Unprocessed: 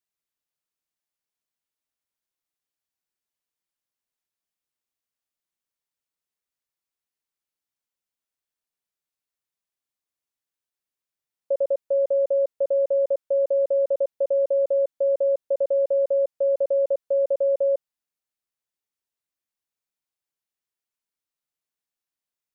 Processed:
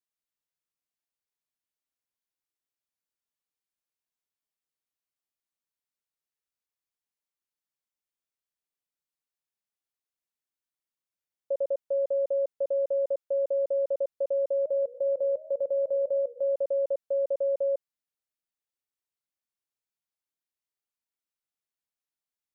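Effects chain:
0:14.53–0:16.54: feedback echo with a swinging delay time 117 ms, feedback 74%, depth 220 cents, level −22 dB
level −5.5 dB

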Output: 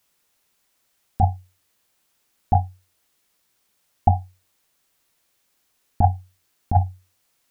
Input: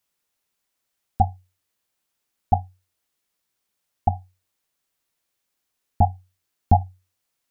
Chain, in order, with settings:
compressor whose output falls as the input rises −18 dBFS, ratio −0.5
level +5.5 dB

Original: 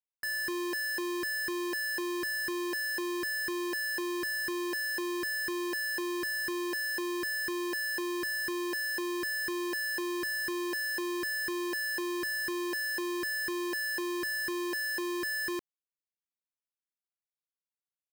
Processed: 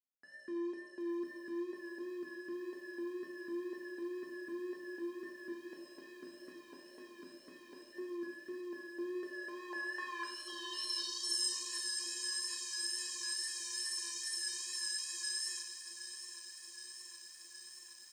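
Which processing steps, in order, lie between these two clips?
0:10.23–0:11.56: time-frequency box erased 1,300–2,800 Hz
low-pass filter 9,000 Hz 24 dB per octave
0:05.52–0:07.93: gate on every frequency bin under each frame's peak −10 dB weak
spectral tilt +2.5 dB per octave
brickwall limiter −29 dBFS, peak gain reduction 5.5 dB
band-pass filter sweep 270 Hz → 7,000 Hz, 0:08.93–0:11.38
tape wow and flutter 49 cents
repeating echo 607 ms, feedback 32%, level −18.5 dB
reverb whose tail is shaped and stops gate 280 ms falling, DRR 1 dB
feedback echo at a low word length 769 ms, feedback 80%, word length 11 bits, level −11 dB
level +4 dB

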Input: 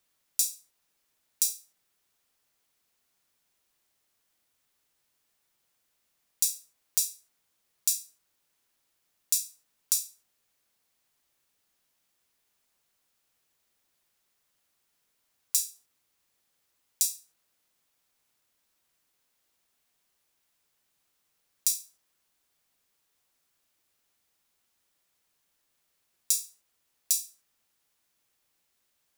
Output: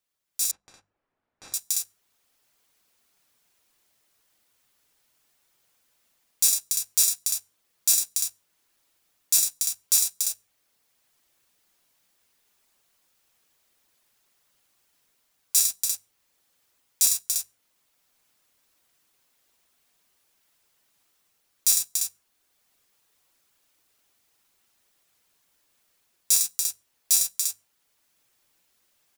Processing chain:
downward compressor 2.5 to 1, threshold −26 dBFS, peak gain reduction 5 dB
reverb reduction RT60 0.59 s
leveller curve on the samples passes 2
mains-hum notches 50/100/150/200 Hz
multi-tap delay 59/104/287/347 ms −10/−11.5/−13/−14 dB
brickwall limiter −15 dBFS, peak gain reduction 11.5 dB
automatic gain control gain up to 15 dB
0:00.51–0:01.54: low-pass filter 1,300 Hz 12 dB per octave
level −4 dB

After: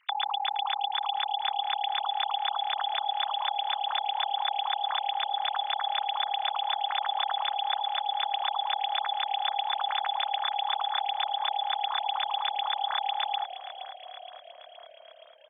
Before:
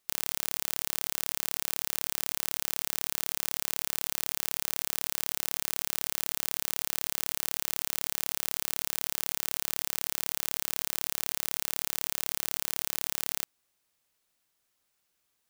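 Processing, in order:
three sine waves on the formant tracks
echo with shifted repeats 470 ms, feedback 64%, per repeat −37 Hz, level −12.5 dB
level +3.5 dB

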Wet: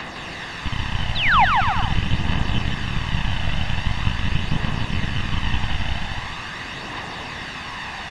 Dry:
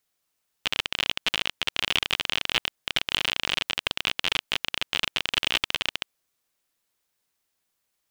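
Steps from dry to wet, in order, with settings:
spike at every zero crossing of −11 dBFS
bass and treble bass +11 dB, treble −14 dB
comb filter 1.1 ms, depth 68%
leveller curve on the samples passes 5
phase shifter 0.43 Hz, delay 1.5 ms, feedback 45%
sound drawn into the spectrogram fall, 0:01.15–0:01.45, 700–4,300 Hz −4 dBFS
head-to-tape spacing loss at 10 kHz 43 dB
on a send: bouncing-ball delay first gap 160 ms, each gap 0.75×, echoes 5
on the sum: level −6 dB

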